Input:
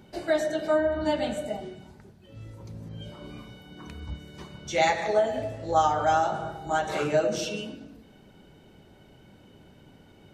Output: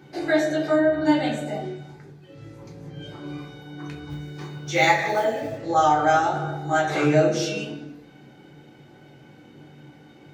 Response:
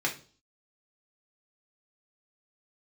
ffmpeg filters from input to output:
-filter_complex "[0:a]asettb=1/sr,asplit=3[a][b][c];[a]atrim=end=4.104[d];[b]atrim=start=4.1:end=5.58,asetpts=PTS-STARTPTS,afade=t=in:d=0.004:c=qsin,afade=t=out:st=1.476:d=0.004:c=qsin,acrusher=bits=7:mode=log:mix=0:aa=0.000001[e];[c]atrim=start=5.576[f];[d][e]acrossfade=d=0.004:c1=hsin:c2=qsin[g];[g][f]acrossfade=d=0.004:c1=qsin:c2=hsin[h];[1:a]atrim=start_sample=2205,atrim=end_sample=6615[i];[h][i]afir=irnorm=-1:irlink=0,volume=-2dB"

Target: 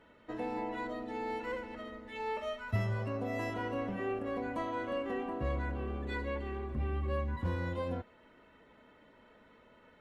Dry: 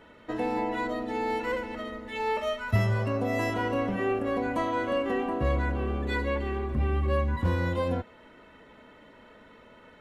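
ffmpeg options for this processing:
-af "highshelf=f=5.6k:g=-4.5,volume=-8dB" -ar 48000 -c:a libopus -b:a 48k

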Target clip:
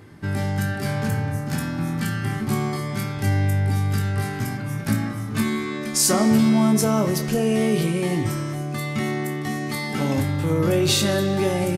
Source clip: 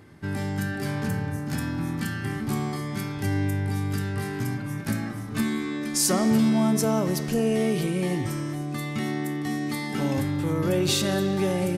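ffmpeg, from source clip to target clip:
-af "aecho=1:1:19|29:0.355|0.266,volume=3.5dB"

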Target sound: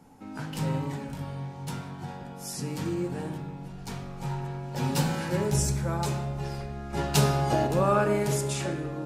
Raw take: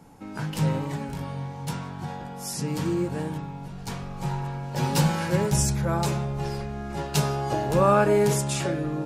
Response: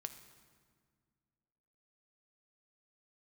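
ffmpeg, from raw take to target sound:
-filter_complex "[0:a]asettb=1/sr,asplit=3[a][b][c];[a]atrim=end=6.934[d];[b]atrim=start=6.93:end=7.67,asetpts=PTS-STARTPTS,afade=t=in:d=0.004:c=qsin,afade=t=out:st=0.736:d=0.004:c=qsin,acontrast=52[e];[c]atrim=start=7.666[f];[d][e]acrossfade=d=0.004:c1=hsin:c2=qsin[g];[g][f]acrossfade=d=0.004:c1=qsin:c2=hsin[h];[1:a]atrim=start_sample=2205,asetrate=83790,aresample=44100[i];[h][i]afir=irnorm=-1:irlink=0,volume=5.5dB"

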